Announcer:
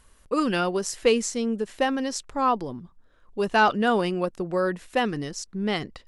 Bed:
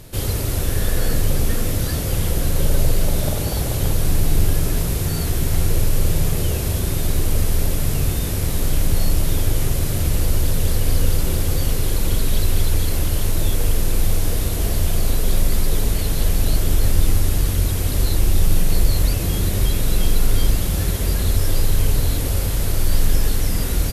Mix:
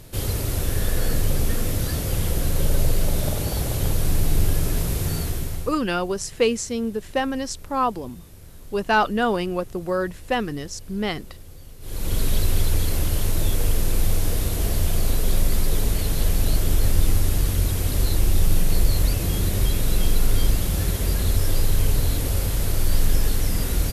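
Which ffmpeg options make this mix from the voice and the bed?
ffmpeg -i stem1.wav -i stem2.wav -filter_complex "[0:a]adelay=5350,volume=0.5dB[link_01];[1:a]volume=18dB,afade=type=out:start_time=5.13:duration=0.65:silence=0.0944061,afade=type=in:start_time=11.8:duration=0.42:silence=0.0891251[link_02];[link_01][link_02]amix=inputs=2:normalize=0" out.wav

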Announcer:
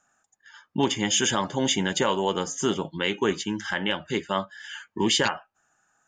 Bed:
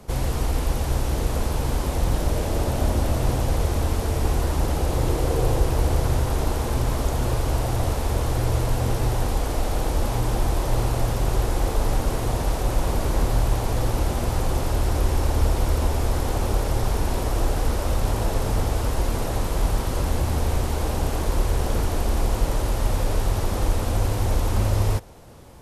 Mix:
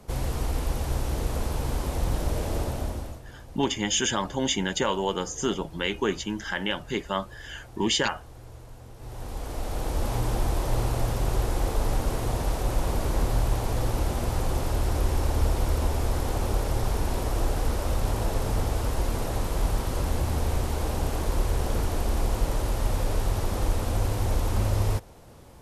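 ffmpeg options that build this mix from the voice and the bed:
ffmpeg -i stem1.wav -i stem2.wav -filter_complex "[0:a]adelay=2800,volume=-2dB[link_01];[1:a]volume=15dB,afade=type=out:start_time=2.56:duration=0.66:silence=0.11885,afade=type=in:start_time=8.96:duration=1.18:silence=0.105925[link_02];[link_01][link_02]amix=inputs=2:normalize=0" out.wav

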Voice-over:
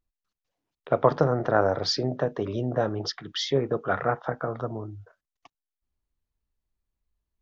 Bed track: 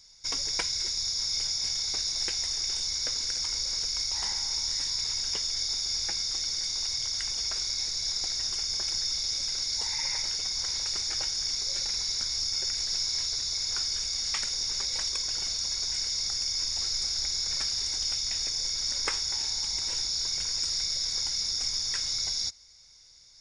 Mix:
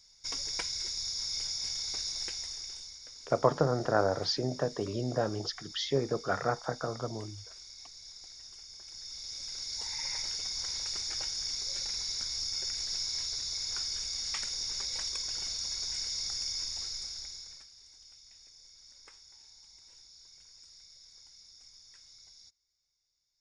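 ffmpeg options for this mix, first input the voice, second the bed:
ffmpeg -i stem1.wav -i stem2.wav -filter_complex "[0:a]adelay=2400,volume=-5dB[link_01];[1:a]volume=8dB,afade=type=out:start_time=2.08:duration=0.91:silence=0.223872,afade=type=in:start_time=8.85:duration=1.32:silence=0.211349,afade=type=out:start_time=16.49:duration=1.18:silence=0.0944061[link_02];[link_01][link_02]amix=inputs=2:normalize=0" out.wav

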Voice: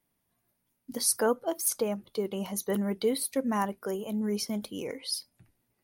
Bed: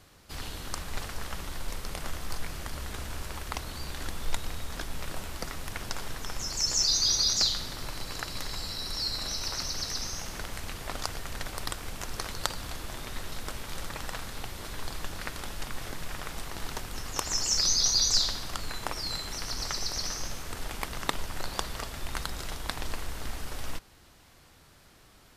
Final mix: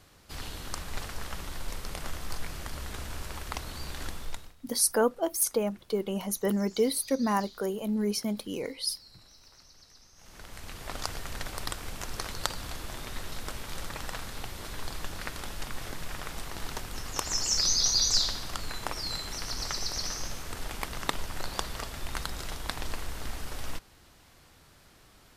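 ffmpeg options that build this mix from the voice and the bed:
ffmpeg -i stem1.wav -i stem2.wav -filter_complex "[0:a]adelay=3750,volume=1.5dB[link_01];[1:a]volume=21.5dB,afade=type=out:start_time=4.05:duration=0.49:silence=0.0794328,afade=type=in:start_time=10.15:duration=0.92:silence=0.0749894[link_02];[link_01][link_02]amix=inputs=2:normalize=0" out.wav

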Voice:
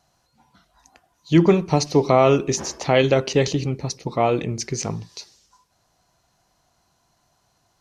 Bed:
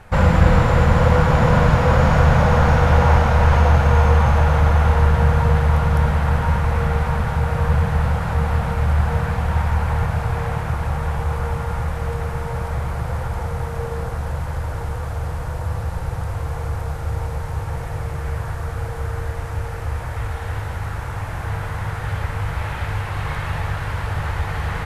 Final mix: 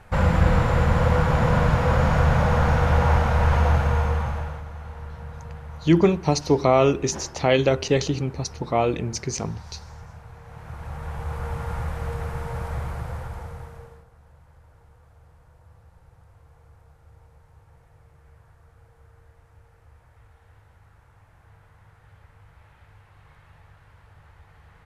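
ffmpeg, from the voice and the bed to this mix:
ffmpeg -i stem1.wav -i stem2.wav -filter_complex "[0:a]adelay=4550,volume=-2dB[link_01];[1:a]volume=11.5dB,afade=type=out:start_time=3.71:duration=0.93:silence=0.141254,afade=type=in:start_time=10.45:duration=1.26:silence=0.149624,afade=type=out:start_time=12.79:duration=1.26:silence=0.0749894[link_02];[link_01][link_02]amix=inputs=2:normalize=0" out.wav

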